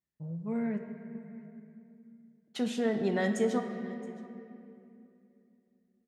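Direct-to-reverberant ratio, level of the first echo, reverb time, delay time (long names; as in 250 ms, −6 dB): 5.0 dB, −22.0 dB, 2.7 s, 672 ms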